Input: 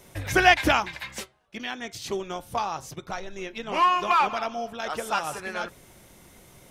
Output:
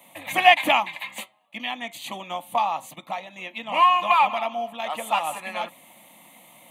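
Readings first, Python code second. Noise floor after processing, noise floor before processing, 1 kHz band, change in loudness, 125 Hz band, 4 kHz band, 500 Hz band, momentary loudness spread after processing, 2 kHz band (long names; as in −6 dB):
−55 dBFS, −54 dBFS, +4.0 dB, +3.0 dB, below −10 dB, +3.5 dB, +0.5 dB, 18 LU, +1.0 dB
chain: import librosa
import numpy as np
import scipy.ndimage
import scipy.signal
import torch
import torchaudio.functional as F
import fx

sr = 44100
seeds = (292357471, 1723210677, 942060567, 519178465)

p1 = scipy.signal.sosfilt(scipy.signal.butter(4, 220.0, 'highpass', fs=sr, output='sos'), x)
p2 = fx.rider(p1, sr, range_db=4, speed_s=2.0)
p3 = p1 + (p2 * librosa.db_to_amplitude(-3.0))
y = fx.fixed_phaser(p3, sr, hz=1500.0, stages=6)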